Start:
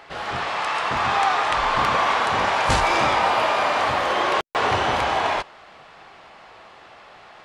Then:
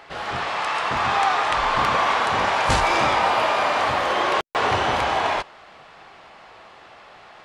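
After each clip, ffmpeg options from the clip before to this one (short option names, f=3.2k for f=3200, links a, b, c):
-af anull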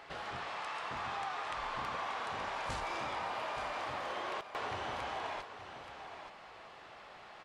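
-filter_complex "[0:a]acompressor=threshold=-35dB:ratio=2.5,asplit=2[a][b];[b]aecho=0:1:877:0.299[c];[a][c]amix=inputs=2:normalize=0,volume=-7.5dB"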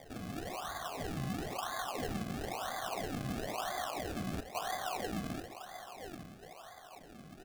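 -filter_complex "[0:a]asplit=3[a][b][c];[a]bandpass=f=730:t=q:w=8,volume=0dB[d];[b]bandpass=f=1.09k:t=q:w=8,volume=-6dB[e];[c]bandpass=f=2.44k:t=q:w=8,volume=-9dB[f];[d][e][f]amix=inputs=3:normalize=0,acrusher=samples=32:mix=1:aa=0.000001:lfo=1:lforange=32:lforate=1,bandreject=f=114.3:t=h:w=4,bandreject=f=228.6:t=h:w=4,bandreject=f=342.9:t=h:w=4,bandreject=f=457.2:t=h:w=4,bandreject=f=571.5:t=h:w=4,bandreject=f=685.8:t=h:w=4,bandreject=f=800.1:t=h:w=4,bandreject=f=914.4:t=h:w=4,bandreject=f=1.0287k:t=h:w=4,bandreject=f=1.143k:t=h:w=4,bandreject=f=1.2573k:t=h:w=4,bandreject=f=1.3716k:t=h:w=4,bandreject=f=1.4859k:t=h:w=4,bandreject=f=1.6002k:t=h:w=4,bandreject=f=1.7145k:t=h:w=4,bandreject=f=1.8288k:t=h:w=4,bandreject=f=1.9431k:t=h:w=4,bandreject=f=2.0574k:t=h:w=4,bandreject=f=2.1717k:t=h:w=4,bandreject=f=2.286k:t=h:w=4,bandreject=f=2.4003k:t=h:w=4,bandreject=f=2.5146k:t=h:w=4,bandreject=f=2.6289k:t=h:w=4,bandreject=f=2.7432k:t=h:w=4,bandreject=f=2.8575k:t=h:w=4,volume=8.5dB"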